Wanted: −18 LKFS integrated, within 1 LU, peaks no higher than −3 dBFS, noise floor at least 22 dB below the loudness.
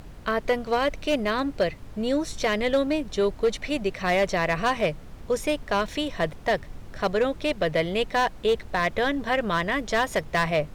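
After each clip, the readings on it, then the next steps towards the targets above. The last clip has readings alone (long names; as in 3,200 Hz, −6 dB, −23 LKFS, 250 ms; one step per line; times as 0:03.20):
share of clipped samples 1.0%; peaks flattened at −16.0 dBFS; background noise floor −43 dBFS; target noise floor −48 dBFS; integrated loudness −25.5 LKFS; sample peak −16.0 dBFS; target loudness −18.0 LKFS
→ clipped peaks rebuilt −16 dBFS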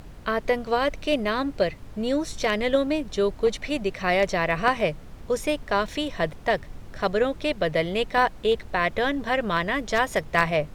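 share of clipped samples 0.0%; background noise floor −43 dBFS; target noise floor −47 dBFS
→ noise reduction from a noise print 6 dB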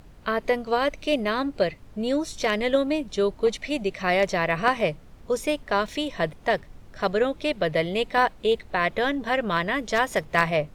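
background noise floor −48 dBFS; integrated loudness −25.0 LKFS; sample peak −7.0 dBFS; target loudness −18.0 LKFS
→ level +7 dB
brickwall limiter −3 dBFS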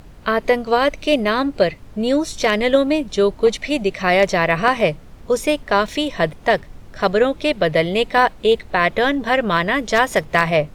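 integrated loudness −18.0 LKFS; sample peak −3.0 dBFS; background noise floor −41 dBFS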